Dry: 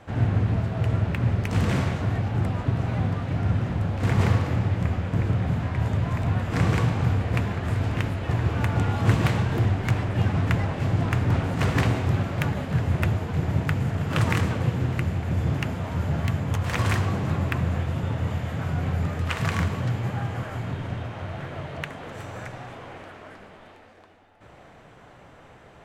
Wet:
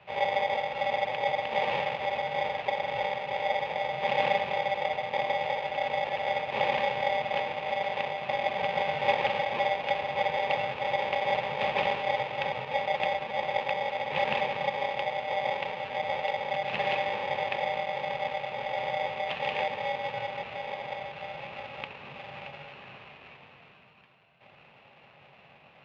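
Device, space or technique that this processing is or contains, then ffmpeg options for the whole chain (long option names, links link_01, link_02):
ring modulator pedal into a guitar cabinet: -af "aeval=exprs='val(0)*sgn(sin(2*PI*690*n/s))':channel_layout=same,highpass=110,equalizer=frequency=140:width_type=q:width=4:gain=8,equalizer=frequency=310:width_type=q:width=4:gain=-9,equalizer=frequency=700:width_type=q:width=4:gain=4,equalizer=frequency=1400:width_type=q:width=4:gain=-7,equalizer=frequency=2600:width_type=q:width=4:gain=9,lowpass=frequency=3500:width=0.5412,lowpass=frequency=3500:width=1.3066,volume=-7dB"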